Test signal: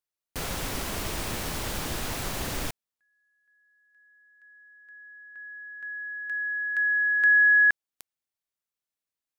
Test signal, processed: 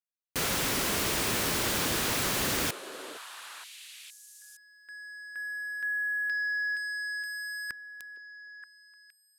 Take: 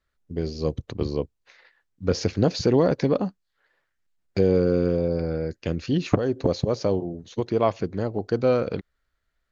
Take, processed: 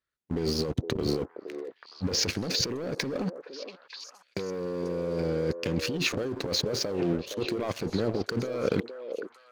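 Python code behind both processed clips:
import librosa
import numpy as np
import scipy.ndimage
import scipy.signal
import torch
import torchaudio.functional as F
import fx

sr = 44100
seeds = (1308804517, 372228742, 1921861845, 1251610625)

y = fx.highpass(x, sr, hz=210.0, slope=6)
y = fx.peak_eq(y, sr, hz=750.0, db=-4.5, octaves=1.0)
y = fx.leveller(y, sr, passes=3)
y = fx.over_compress(y, sr, threshold_db=-23.0, ratio=-1.0)
y = fx.echo_stepped(y, sr, ms=465, hz=470.0, octaves=1.4, feedback_pct=70, wet_db=-6.5)
y = y * 10.0 ** (-6.5 / 20.0)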